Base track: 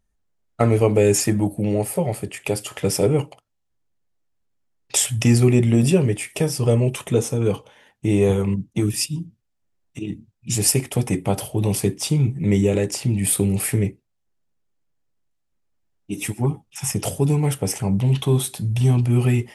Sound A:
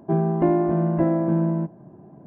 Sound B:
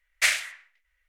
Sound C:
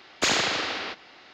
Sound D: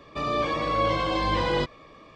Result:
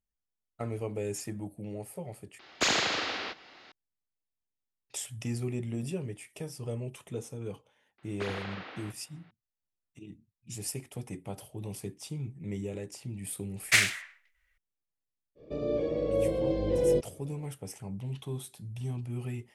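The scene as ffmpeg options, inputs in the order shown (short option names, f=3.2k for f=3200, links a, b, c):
-filter_complex "[3:a]asplit=2[a][b];[0:a]volume=-18.5dB[c];[b]highpass=110,lowpass=2.5k[d];[4:a]lowshelf=f=730:t=q:w=3:g=13.5[e];[c]asplit=2[f][g];[f]atrim=end=2.394[h];[a]atrim=end=1.33,asetpts=PTS-STARTPTS,volume=-3.5dB[i];[g]atrim=start=3.716[j];[d]atrim=end=1.33,asetpts=PTS-STARTPTS,volume=-13dB,afade=t=in:d=0.004:c=hsin,afade=t=out:st=1.326:d=0.004:c=hsin,adelay=7980[k];[2:a]atrim=end=1.08,asetpts=PTS-STARTPTS,volume=-0.5dB,afade=t=in:d=0.004:c=hsin,afade=t=out:st=1.076:d=0.004:c=hsin,adelay=13500[l];[e]atrim=end=2.15,asetpts=PTS-STARTPTS,volume=-18dB,afade=t=in:d=0.05,afade=t=out:st=2.1:d=0.05,adelay=15350[m];[h][i]acrossfade=d=0.004:c1=hsin:c2=hsin[n];[n][j]acrossfade=d=0.004:c1=hsin:c2=hsin[o];[o][k][l][m]amix=inputs=4:normalize=0"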